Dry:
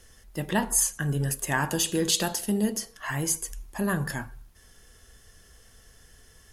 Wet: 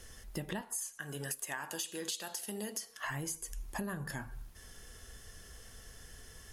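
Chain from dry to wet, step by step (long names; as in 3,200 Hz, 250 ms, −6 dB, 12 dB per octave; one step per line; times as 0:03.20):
0:00.61–0:03.04: high-pass filter 850 Hz 6 dB per octave
downward compressor 12 to 1, threshold −38 dBFS, peak gain reduction 19.5 dB
level +2 dB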